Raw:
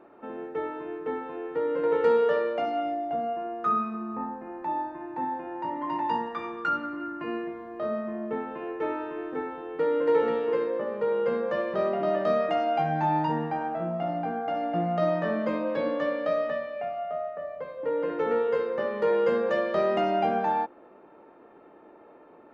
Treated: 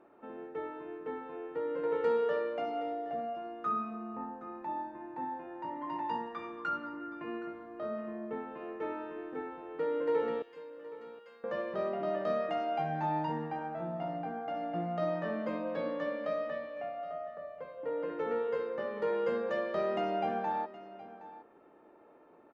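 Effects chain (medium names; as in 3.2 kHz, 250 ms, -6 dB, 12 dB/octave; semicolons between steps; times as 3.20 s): 6.88–7.52 s: low-pass 2.9 kHz -> 4.3 kHz; 10.42–11.44 s: differentiator; delay 769 ms -16.5 dB; trim -7.5 dB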